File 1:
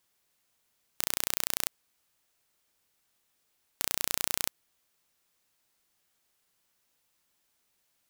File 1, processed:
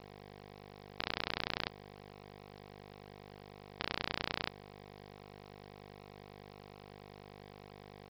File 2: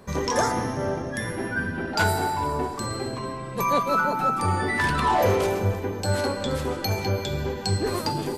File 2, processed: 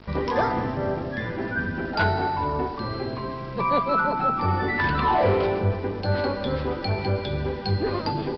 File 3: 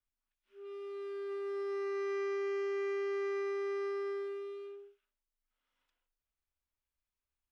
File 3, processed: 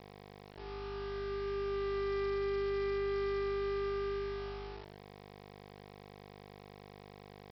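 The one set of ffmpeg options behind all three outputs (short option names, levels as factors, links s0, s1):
-af "aeval=exprs='val(0)+0.00447*(sin(2*PI*50*n/s)+sin(2*PI*2*50*n/s)/2+sin(2*PI*3*50*n/s)/3+sin(2*PI*4*50*n/s)/4+sin(2*PI*5*50*n/s)/5)':c=same,aemphasis=mode=reproduction:type=cd,aresample=11025,aeval=exprs='val(0)*gte(abs(val(0)),0.00708)':c=same,aresample=44100,acontrast=37,volume=0.562"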